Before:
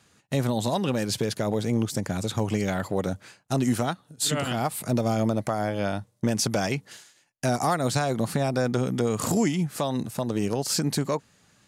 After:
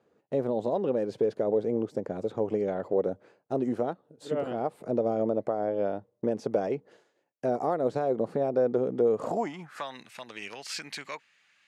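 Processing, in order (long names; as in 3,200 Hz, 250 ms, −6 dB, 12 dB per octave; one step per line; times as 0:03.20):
band-pass filter sweep 460 Hz → 2,300 Hz, 0:09.13–0:09.99
level +4.5 dB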